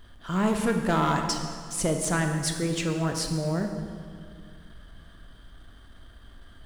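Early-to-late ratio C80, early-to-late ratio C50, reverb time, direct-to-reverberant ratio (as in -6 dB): 7.0 dB, 5.5 dB, 2.1 s, 4.0 dB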